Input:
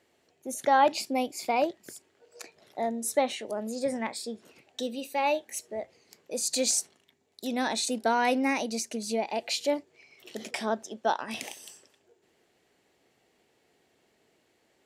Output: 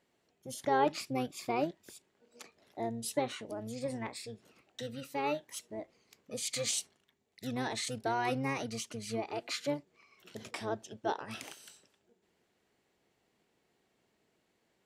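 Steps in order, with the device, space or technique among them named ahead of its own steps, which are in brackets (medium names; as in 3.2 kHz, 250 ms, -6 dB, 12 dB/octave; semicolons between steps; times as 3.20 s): octave pedal (harmony voices -12 st -5 dB); trim -8 dB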